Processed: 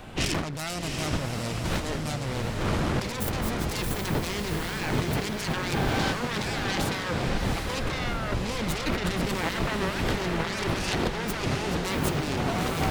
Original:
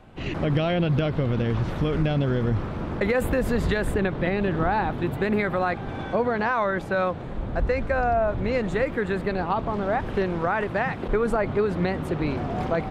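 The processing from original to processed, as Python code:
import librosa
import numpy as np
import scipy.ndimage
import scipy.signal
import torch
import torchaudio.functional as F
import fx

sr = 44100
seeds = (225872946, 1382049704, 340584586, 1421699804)

p1 = fx.self_delay(x, sr, depth_ms=0.66)
p2 = fx.high_shelf(p1, sr, hz=2300.0, db=10.0)
p3 = fx.over_compress(p2, sr, threshold_db=-31.0, ratio=-1.0)
p4 = fx.high_shelf(p3, sr, hz=9300.0, db=6.5)
y = p4 + fx.echo_diffused(p4, sr, ms=742, feedback_pct=46, wet_db=-4.0, dry=0)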